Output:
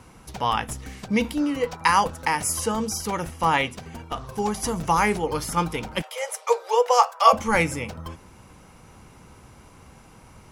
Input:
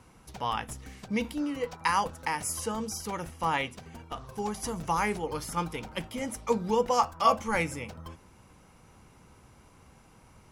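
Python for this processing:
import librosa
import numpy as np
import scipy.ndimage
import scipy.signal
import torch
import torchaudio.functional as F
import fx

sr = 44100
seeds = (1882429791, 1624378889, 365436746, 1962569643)

y = fx.steep_highpass(x, sr, hz=450.0, slope=72, at=(6.01, 7.32), fade=0.02)
y = y * 10.0 ** (7.5 / 20.0)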